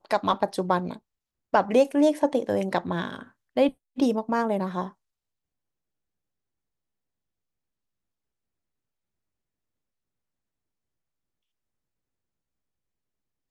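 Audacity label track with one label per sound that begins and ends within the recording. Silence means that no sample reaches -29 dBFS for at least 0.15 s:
1.540000	3.190000	sound
3.570000	3.690000	sound
3.980000	4.870000	sound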